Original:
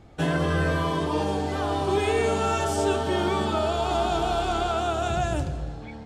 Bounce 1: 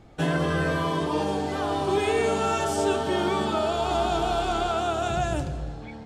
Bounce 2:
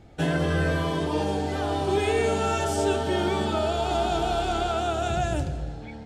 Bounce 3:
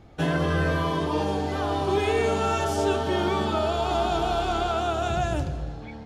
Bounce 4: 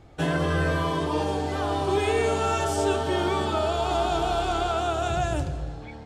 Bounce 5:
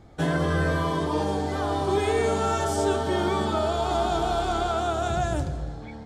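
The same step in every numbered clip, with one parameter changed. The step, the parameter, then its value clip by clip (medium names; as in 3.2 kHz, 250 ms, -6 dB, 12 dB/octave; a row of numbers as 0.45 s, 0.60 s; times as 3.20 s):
peaking EQ, frequency: 80 Hz, 1.1 kHz, 8.2 kHz, 210 Hz, 2.7 kHz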